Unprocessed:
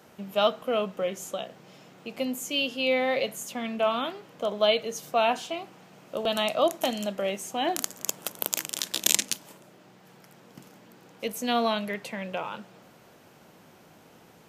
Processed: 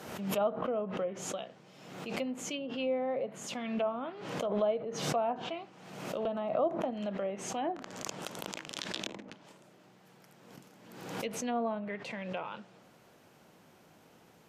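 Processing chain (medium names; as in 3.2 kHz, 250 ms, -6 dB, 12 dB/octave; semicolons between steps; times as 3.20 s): low-pass that closes with the level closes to 900 Hz, closed at -23 dBFS; swell ahead of each attack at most 53 dB/s; trim -6 dB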